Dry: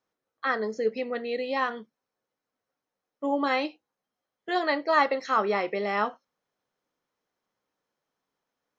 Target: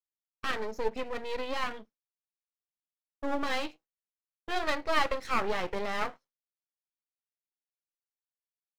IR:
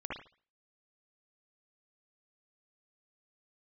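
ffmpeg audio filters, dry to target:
-af "aeval=exprs='max(val(0),0)':c=same,agate=range=-33dB:threshold=-49dB:ratio=3:detection=peak"

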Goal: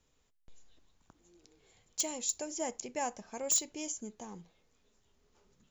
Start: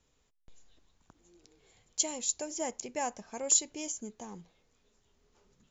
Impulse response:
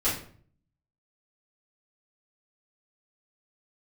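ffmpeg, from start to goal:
-filter_complex "[0:a]aeval=exprs='0.1*(abs(mod(val(0)/0.1+3,4)-2)-1)':c=same,acontrast=78,asplit=2[a][b];[1:a]atrim=start_sample=2205,atrim=end_sample=3528[c];[b][c]afir=irnorm=-1:irlink=0,volume=-30dB[d];[a][d]amix=inputs=2:normalize=0,volume=-8.5dB"

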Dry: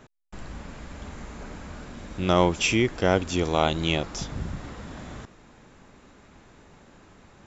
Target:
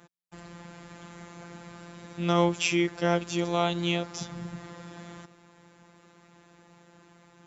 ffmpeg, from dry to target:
-af "afftfilt=real='hypot(re,im)*cos(PI*b)':imag='0':win_size=1024:overlap=0.75,highpass=76"

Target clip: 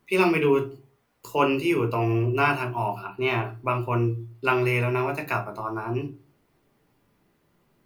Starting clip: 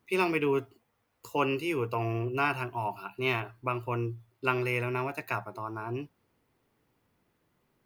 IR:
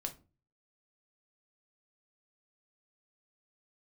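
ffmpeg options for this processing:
-filter_complex "[0:a]asettb=1/sr,asplit=3[a][b][c];[a]atrim=end=2.994[d];[b]atrim=start=2.99:end=3.44,asetpts=PTS-STARTPTS,afade=t=in:d=0.004:c=qsin,afade=t=out:st=0.446:d=0.004:c=qsin,highshelf=f=3.6k:g=-8[e];[c]atrim=start=3.436[f];[d][e]acrossfade=d=0.004:c1=hsin:c2=qsin[g];[g][f]acrossfade=d=0.004:c1=qsin:c2=hsin[h];[1:a]atrim=start_sample=2205,asetrate=48510,aresample=44100[i];[h][i]afir=irnorm=-1:irlink=0,volume=7.5dB"

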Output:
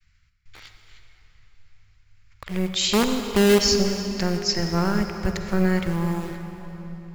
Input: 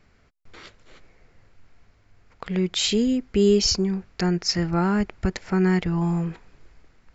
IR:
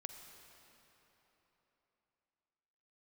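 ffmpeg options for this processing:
-filter_complex "[0:a]agate=range=-33dB:threshold=-56dB:ratio=3:detection=peak,acrossover=split=140|1500[a][b][c];[b]acrusher=bits=4:dc=4:mix=0:aa=0.000001[d];[a][d][c]amix=inputs=3:normalize=0[e];[1:a]atrim=start_sample=2205[f];[e][f]afir=irnorm=-1:irlink=0,volume=5dB"

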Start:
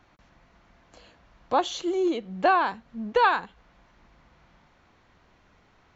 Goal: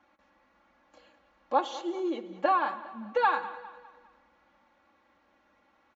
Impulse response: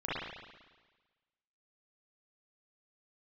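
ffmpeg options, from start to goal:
-filter_complex "[0:a]highpass=f=520:p=1,highshelf=f=2.3k:g=-11.5,aecho=1:1:3.6:0.97,aecho=1:1:202|404|606|808:0.141|0.0622|0.0273|0.012,asplit=2[a][b];[1:a]atrim=start_sample=2205[c];[b][c]afir=irnorm=-1:irlink=0,volume=-20dB[d];[a][d]amix=inputs=2:normalize=0,volume=-4dB"

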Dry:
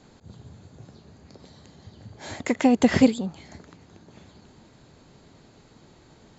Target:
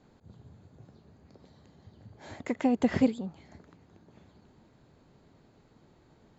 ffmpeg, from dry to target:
-af "highshelf=f=3.1k:g=-10,volume=-7dB"

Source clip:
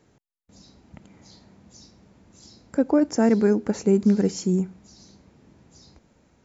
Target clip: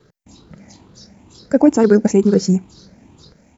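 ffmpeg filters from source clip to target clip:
-af "afftfilt=real='re*pow(10,9/40*sin(2*PI*(0.62*log(max(b,1)*sr/1024/100)/log(2)-(1.2)*(pts-256)/sr)))':imag='im*pow(10,9/40*sin(2*PI*(0.62*log(max(b,1)*sr/1024/100)/log(2)-(1.2)*(pts-256)/sr)))':win_size=1024:overlap=0.75,atempo=1.8,volume=7dB"

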